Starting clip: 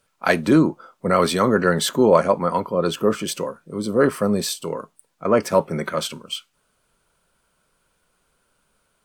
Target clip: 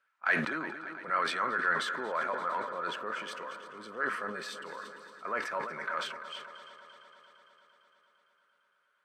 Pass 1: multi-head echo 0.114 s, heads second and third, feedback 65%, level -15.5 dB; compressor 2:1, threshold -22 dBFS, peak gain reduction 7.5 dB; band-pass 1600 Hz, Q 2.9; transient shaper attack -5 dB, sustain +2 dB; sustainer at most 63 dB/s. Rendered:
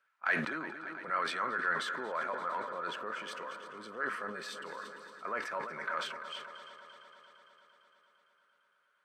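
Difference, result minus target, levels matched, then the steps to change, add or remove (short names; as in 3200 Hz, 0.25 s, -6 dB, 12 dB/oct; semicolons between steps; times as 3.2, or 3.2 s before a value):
compressor: peak gain reduction +3 dB
change: compressor 2:1, threshold -15.5 dBFS, peak gain reduction 4 dB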